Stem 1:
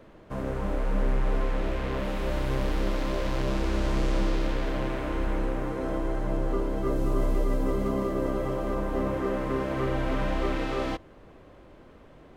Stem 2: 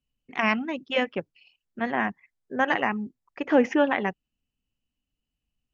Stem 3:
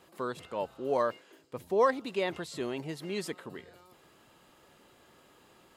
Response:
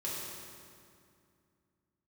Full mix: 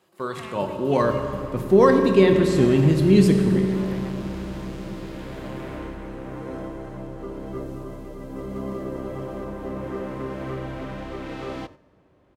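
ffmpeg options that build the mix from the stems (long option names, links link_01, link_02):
-filter_complex "[0:a]lowshelf=frequency=150:gain=8,acompressor=threshold=-20dB:ratio=6,adelay=700,volume=-3.5dB,asplit=2[link_01][link_02];[link_02]volume=-17.5dB[link_03];[1:a]acompressor=threshold=-29dB:ratio=6,volume=-10dB[link_04];[2:a]asubboost=boost=12:cutoff=250,dynaudnorm=framelen=140:gausssize=5:maxgain=5dB,volume=0dB,asplit=2[link_05][link_06];[link_06]volume=-3dB[link_07];[3:a]atrim=start_sample=2205[link_08];[link_03][link_07]amix=inputs=2:normalize=0[link_09];[link_09][link_08]afir=irnorm=-1:irlink=0[link_10];[link_01][link_04][link_05][link_10]amix=inputs=4:normalize=0,highpass=87,agate=range=-8dB:threshold=-43dB:ratio=16:detection=peak"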